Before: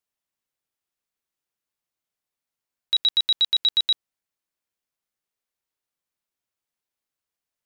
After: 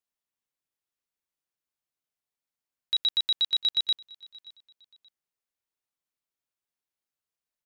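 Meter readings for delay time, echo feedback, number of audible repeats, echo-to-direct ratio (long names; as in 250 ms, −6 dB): 578 ms, 31%, 2, −22.5 dB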